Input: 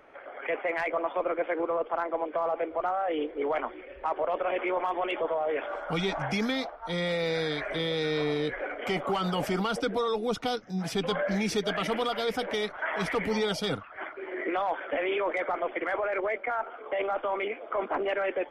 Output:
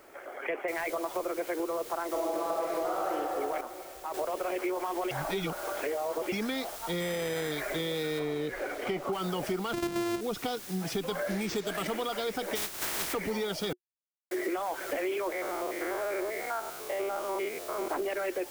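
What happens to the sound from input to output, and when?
0.68 s: noise floor step -64 dB -44 dB
2.09–3.10 s: reverb throw, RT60 2.5 s, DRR -7.5 dB
3.61–4.14 s: gain -8 dB
5.11–6.32 s: reverse
7.00–7.52 s: careless resampling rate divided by 8×, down none, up hold
8.19–9.13 s: treble shelf 4.6 kHz -9.5 dB
9.73–10.21 s: sorted samples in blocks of 128 samples
11.27–11.88 s: careless resampling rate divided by 4×, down none, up hold
12.55–13.12 s: spectral contrast reduction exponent 0.25
13.73–14.31 s: mute
15.32–17.90 s: spectrogram pixelated in time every 100 ms
whole clip: peaking EQ 360 Hz +8 dB 0.23 oct; compression, threshold -29 dBFS

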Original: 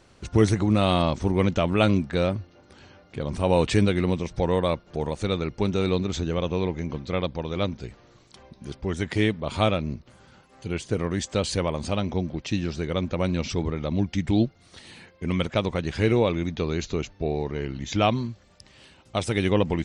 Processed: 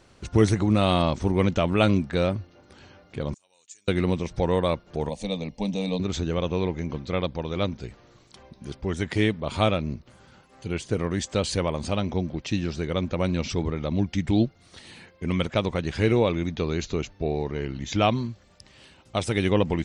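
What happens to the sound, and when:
3.34–3.88 s: band-pass filter 6.9 kHz, Q 15
5.09–6.00 s: static phaser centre 370 Hz, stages 6

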